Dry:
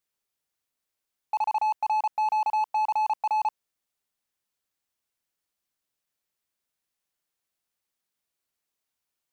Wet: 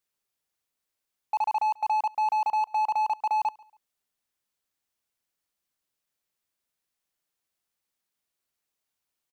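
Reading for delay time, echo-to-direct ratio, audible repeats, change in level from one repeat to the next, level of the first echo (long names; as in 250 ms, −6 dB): 140 ms, −23.5 dB, 2, −11.0 dB, −24.0 dB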